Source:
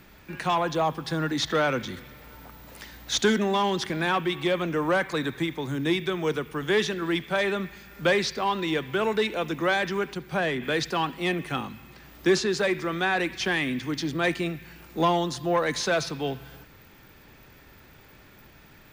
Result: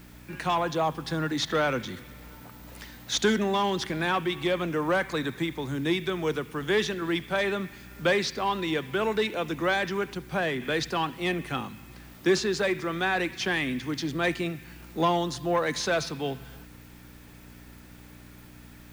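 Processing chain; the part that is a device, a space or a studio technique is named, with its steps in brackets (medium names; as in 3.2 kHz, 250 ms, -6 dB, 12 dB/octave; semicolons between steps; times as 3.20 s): video cassette with head-switching buzz (mains buzz 60 Hz, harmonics 5, -49 dBFS -2 dB/octave; white noise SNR 31 dB); trim -1.5 dB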